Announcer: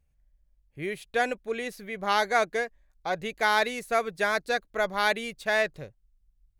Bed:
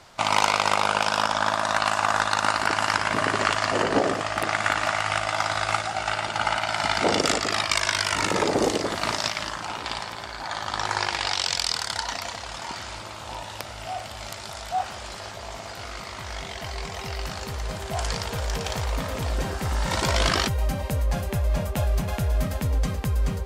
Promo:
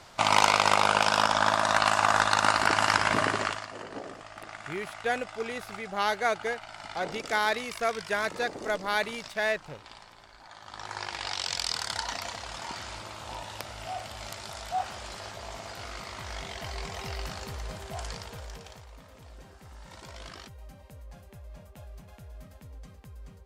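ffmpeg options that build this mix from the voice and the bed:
ffmpeg -i stem1.wav -i stem2.wav -filter_complex "[0:a]adelay=3900,volume=-3dB[link_01];[1:a]volume=13.5dB,afade=type=out:start_time=3.12:duration=0.55:silence=0.133352,afade=type=in:start_time=10.6:duration=1.29:silence=0.199526,afade=type=out:start_time=17.08:duration=1.77:silence=0.11885[link_02];[link_01][link_02]amix=inputs=2:normalize=0" out.wav

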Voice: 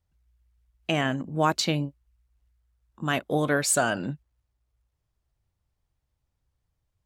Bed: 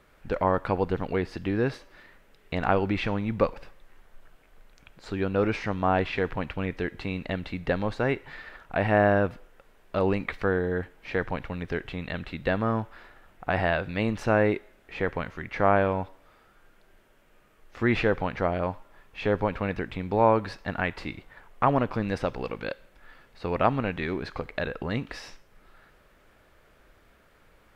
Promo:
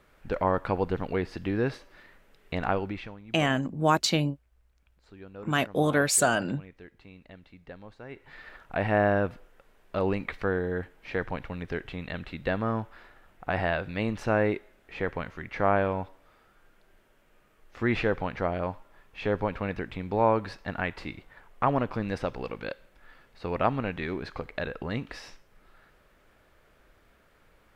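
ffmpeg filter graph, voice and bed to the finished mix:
ffmpeg -i stem1.wav -i stem2.wav -filter_complex "[0:a]adelay=2450,volume=0.5dB[link_01];[1:a]volume=14.5dB,afade=type=out:start_time=2.55:duration=0.61:silence=0.141254,afade=type=in:start_time=8.09:duration=0.41:silence=0.158489[link_02];[link_01][link_02]amix=inputs=2:normalize=0" out.wav

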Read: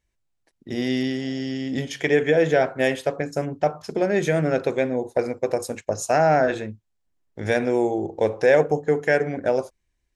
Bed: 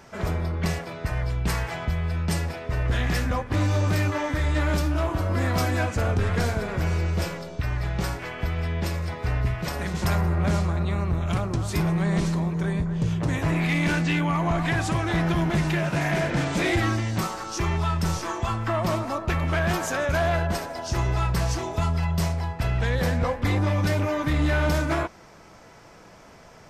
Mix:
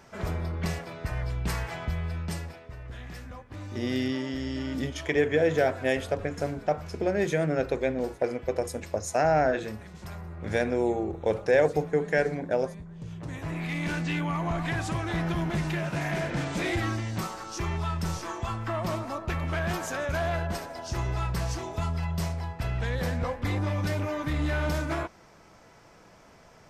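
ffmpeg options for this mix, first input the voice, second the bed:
ffmpeg -i stem1.wav -i stem2.wav -filter_complex "[0:a]adelay=3050,volume=-5dB[link_01];[1:a]volume=7dB,afade=type=out:start_time=1.97:duration=0.8:silence=0.237137,afade=type=in:start_time=12.95:duration=1.23:silence=0.266073[link_02];[link_01][link_02]amix=inputs=2:normalize=0" out.wav

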